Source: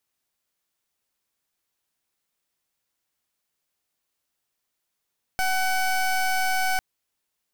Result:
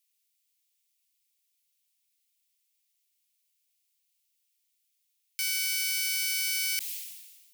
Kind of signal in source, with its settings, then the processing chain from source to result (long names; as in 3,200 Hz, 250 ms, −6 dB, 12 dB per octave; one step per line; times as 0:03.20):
pulse wave 752 Hz, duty 21% −23 dBFS 1.40 s
Butterworth high-pass 2,200 Hz 36 dB per octave
high-shelf EQ 8,200 Hz +5.5 dB
level that may fall only so fast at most 44 dB per second